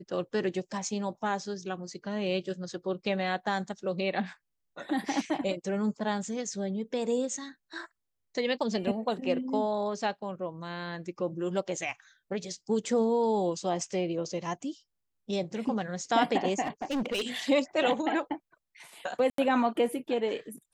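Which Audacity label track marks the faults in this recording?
16.620000	17.400000	clipped -27 dBFS
19.300000	19.380000	dropout 83 ms

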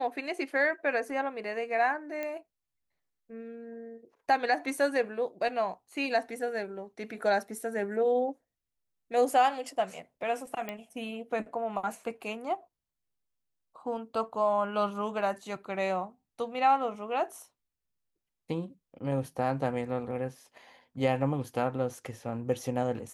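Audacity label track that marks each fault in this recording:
2.230000	2.230000	pop -22 dBFS
10.690000	10.690000	pop -21 dBFS

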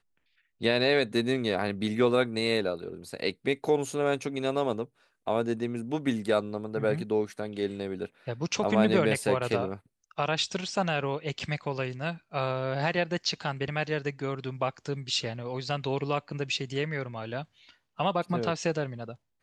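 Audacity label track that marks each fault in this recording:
11.390000	11.400000	dropout 5.5 ms

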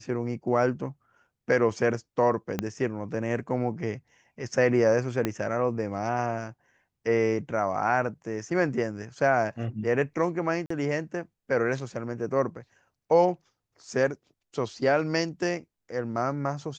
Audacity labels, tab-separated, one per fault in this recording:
2.590000	2.590000	pop -13 dBFS
5.250000	5.250000	pop -12 dBFS
10.660000	10.700000	dropout 44 ms

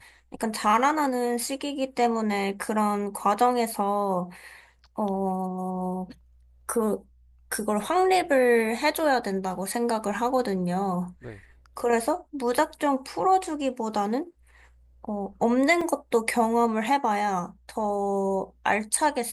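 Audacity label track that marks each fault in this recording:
15.810000	15.810000	dropout 3.8 ms

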